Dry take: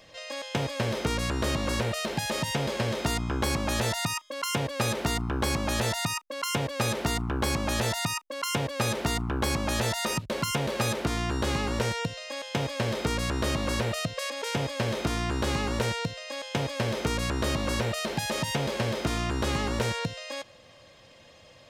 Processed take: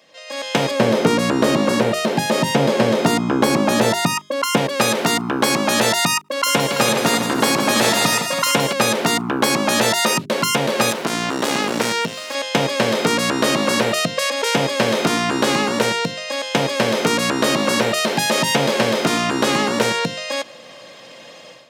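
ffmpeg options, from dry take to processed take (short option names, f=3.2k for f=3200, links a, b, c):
-filter_complex "[0:a]asettb=1/sr,asplit=3[a][b][c];[a]atrim=end=0.714[d];[b]atrim=start=0.71:end=4.57,asetpts=PTS-STARTPTS,afade=t=in:d=0.004:c=qsin,afade=t=out:st=3.856:d=0.004:c=qsin,tiltshelf=f=970:g=4.5[e];[c]atrim=start=4.566[f];[d][e]acrossfade=d=0.004:c1=hsin:c2=qsin[g];[g][f]acrossfade=d=0.004:c1=qsin:c2=hsin,asettb=1/sr,asplit=3[h][i][j];[h]atrim=end=6.194[k];[i]atrim=start=6.19:end=8.73,asetpts=PTS-STARTPTS,afade=t=in:d=0.004:c=qsin,afade=t=out:st=2.536:d=0.004:c=qsin,aecho=1:1:52|71|161|276|334:0.106|0.112|0.398|0.211|0.316,atrim=end_sample=112014[l];[j]atrim=start=8.726[m];[k][l]acrossfade=d=0.004:c1=hsin:c2=qsin[n];[n][m]acrossfade=d=0.004:c1=qsin:c2=hsin,asettb=1/sr,asplit=3[o][p][q];[o]atrim=end=10.904[r];[p]atrim=start=10.9:end=12.35,asetpts=PTS-STARTPTS,afade=t=in:d=0.004:c=qsin,afade=t=out:st=1.446:d=0.004:c=qsin,aeval=exprs='max(val(0),0)':c=same[s];[q]atrim=start=12.346[t];[r][s]acrossfade=d=0.004:c1=hsin:c2=qsin[u];[u][t]acrossfade=d=0.004:c1=qsin:c2=hsin,highpass=f=170:w=0.5412,highpass=f=170:w=1.3066,bandreject=f=50:t=h:w=6,bandreject=f=100:t=h:w=6,bandreject=f=150:t=h:w=6,bandreject=f=200:t=h:w=6,bandreject=f=250:t=h:w=6,bandreject=f=300:t=h:w=6,bandreject=f=350:t=h:w=6,bandreject=f=400:t=h:w=6,dynaudnorm=f=250:g=3:m=14dB"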